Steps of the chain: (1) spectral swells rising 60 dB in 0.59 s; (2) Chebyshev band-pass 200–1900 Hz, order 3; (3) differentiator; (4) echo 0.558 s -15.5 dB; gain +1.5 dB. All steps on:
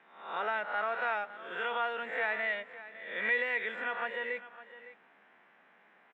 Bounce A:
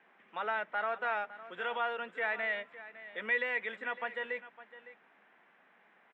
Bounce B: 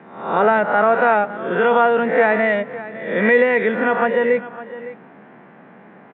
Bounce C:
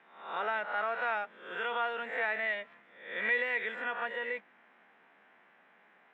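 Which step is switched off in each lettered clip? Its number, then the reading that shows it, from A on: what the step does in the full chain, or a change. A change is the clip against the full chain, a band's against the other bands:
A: 1, loudness change -2.0 LU; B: 3, 250 Hz band +15.0 dB; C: 4, momentary loudness spread change -4 LU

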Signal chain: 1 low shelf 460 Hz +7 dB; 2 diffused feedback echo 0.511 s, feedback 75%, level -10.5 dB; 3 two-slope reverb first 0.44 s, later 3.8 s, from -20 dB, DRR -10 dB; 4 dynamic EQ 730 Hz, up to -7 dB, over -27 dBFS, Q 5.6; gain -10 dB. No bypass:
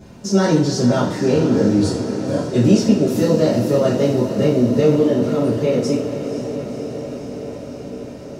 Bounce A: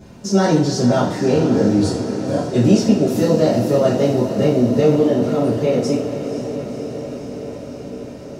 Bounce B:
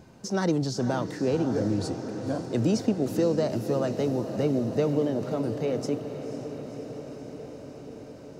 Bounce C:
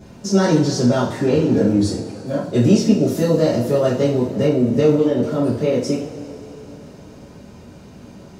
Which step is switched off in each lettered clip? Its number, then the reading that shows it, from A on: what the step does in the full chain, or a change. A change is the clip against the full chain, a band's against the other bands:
4, 1 kHz band +3.0 dB; 3, 1 kHz band +2.5 dB; 2, momentary loudness spread change -3 LU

